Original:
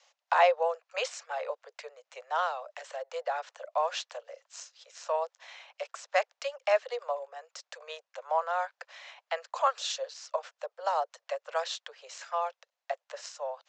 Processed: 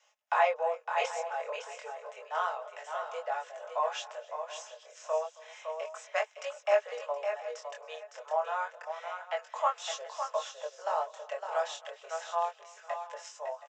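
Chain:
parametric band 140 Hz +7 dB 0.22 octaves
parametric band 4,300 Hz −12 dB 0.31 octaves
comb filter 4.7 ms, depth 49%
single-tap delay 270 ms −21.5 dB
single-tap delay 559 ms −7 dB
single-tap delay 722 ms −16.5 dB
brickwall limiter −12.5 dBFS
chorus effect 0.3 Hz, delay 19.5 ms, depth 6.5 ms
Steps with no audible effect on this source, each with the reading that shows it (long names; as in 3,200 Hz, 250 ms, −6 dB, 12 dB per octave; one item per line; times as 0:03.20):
parametric band 140 Hz: nothing at its input below 400 Hz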